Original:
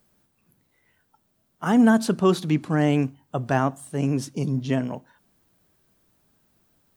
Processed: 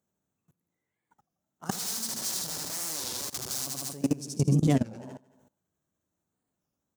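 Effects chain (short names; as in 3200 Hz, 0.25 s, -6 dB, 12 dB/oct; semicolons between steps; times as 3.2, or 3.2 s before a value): Wiener smoothing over 9 samples; 1.71–3.67 wrapped overs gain 23.5 dB; 4.31–4.72 tone controls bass +5 dB, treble -8 dB; notches 60/120 Hz; feedback echo 75 ms, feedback 58%, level -3.5 dB; level quantiser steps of 21 dB; HPF 60 Hz; resonant high shelf 3800 Hz +13.5 dB, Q 1.5; record warp 33 1/3 rpm, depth 250 cents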